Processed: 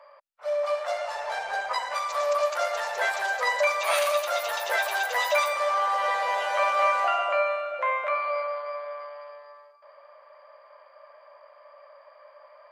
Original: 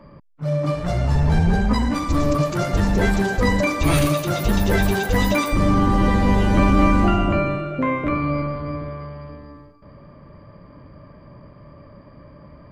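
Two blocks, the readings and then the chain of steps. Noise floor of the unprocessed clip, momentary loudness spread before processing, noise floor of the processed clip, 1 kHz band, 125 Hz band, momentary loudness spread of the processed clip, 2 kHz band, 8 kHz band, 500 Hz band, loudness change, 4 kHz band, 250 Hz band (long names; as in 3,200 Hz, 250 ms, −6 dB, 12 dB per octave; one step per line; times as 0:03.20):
−46 dBFS, 10 LU, −54 dBFS, −0.5 dB, below −40 dB, 9 LU, −0.5 dB, −3.5 dB, −3.0 dB, −6.0 dB, −2.0 dB, below −40 dB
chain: elliptic high-pass filter 580 Hz, stop band 50 dB
high-shelf EQ 5,900 Hz −4.5 dB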